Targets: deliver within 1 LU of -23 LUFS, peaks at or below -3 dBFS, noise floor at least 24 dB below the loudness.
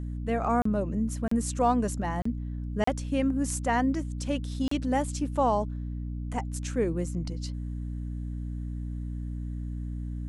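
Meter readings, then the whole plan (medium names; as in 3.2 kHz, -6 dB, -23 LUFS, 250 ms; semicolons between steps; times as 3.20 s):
dropouts 5; longest dropout 34 ms; hum 60 Hz; highest harmonic 300 Hz; hum level -31 dBFS; loudness -30.0 LUFS; peak level -12.5 dBFS; loudness target -23.0 LUFS
-> interpolate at 0.62/1.28/2.22/2.84/4.68 s, 34 ms; de-hum 60 Hz, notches 5; trim +7 dB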